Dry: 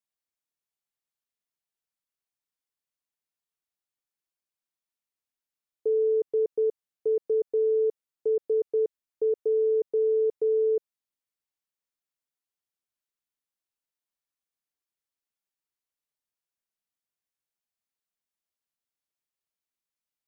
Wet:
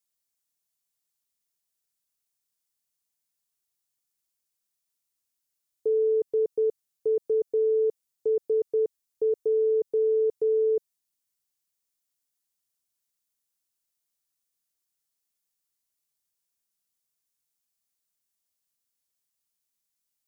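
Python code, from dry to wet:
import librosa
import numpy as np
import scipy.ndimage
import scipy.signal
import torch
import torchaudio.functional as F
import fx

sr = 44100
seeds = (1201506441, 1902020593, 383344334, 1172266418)

y = fx.bass_treble(x, sr, bass_db=4, treble_db=11)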